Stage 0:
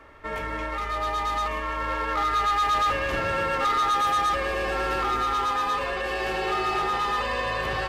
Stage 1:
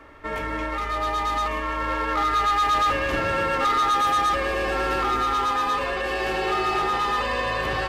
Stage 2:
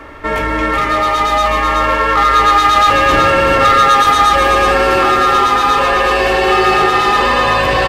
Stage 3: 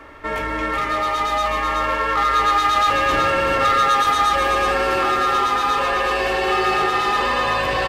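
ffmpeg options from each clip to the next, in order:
ffmpeg -i in.wav -af "equalizer=frequency=290:width_type=o:width=0.36:gain=5,volume=2dB" out.wav
ffmpeg -i in.wav -filter_complex "[0:a]asplit=2[link_01][link_02];[link_02]alimiter=limit=-23.5dB:level=0:latency=1,volume=1.5dB[link_03];[link_01][link_03]amix=inputs=2:normalize=0,aecho=1:1:377:0.631,volume=7dB" out.wav
ffmpeg -i in.wav -af "lowshelf=frequency=370:gain=-3,volume=-7dB" out.wav

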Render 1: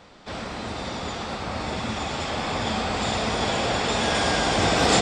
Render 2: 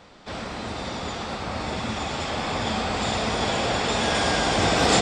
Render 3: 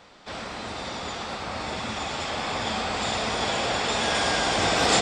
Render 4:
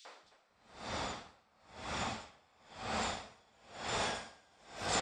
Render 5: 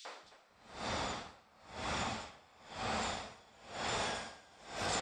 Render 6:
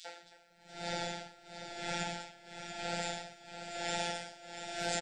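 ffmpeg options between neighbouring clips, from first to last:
ffmpeg -i in.wav -af anull out.wav
ffmpeg -i in.wav -af "lowshelf=frequency=420:gain=-6.5" out.wav
ffmpeg -i in.wav -filter_complex "[0:a]acompressor=threshold=-43dB:ratio=2,acrossover=split=330|3400[link_01][link_02][link_03];[link_02]adelay=50[link_04];[link_01]adelay=230[link_05];[link_05][link_04][link_03]amix=inputs=3:normalize=0,aeval=exprs='val(0)*pow(10,-34*(0.5-0.5*cos(2*PI*1*n/s))/20)':channel_layout=same,volume=3.5dB" out.wav
ffmpeg -i in.wav -af "acompressor=threshold=-41dB:ratio=3,volume=5.5dB" out.wav
ffmpeg -i in.wav -af "afftfilt=real='hypot(re,im)*cos(PI*b)':imag='0':win_size=1024:overlap=0.75,asuperstop=centerf=1100:order=12:qfactor=2.8,aecho=1:1:688:0.355,volume=4.5dB" out.wav

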